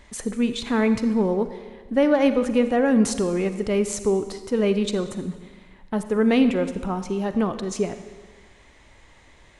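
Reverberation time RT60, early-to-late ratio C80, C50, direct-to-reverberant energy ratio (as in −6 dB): 1.4 s, 12.0 dB, 10.5 dB, 10.0 dB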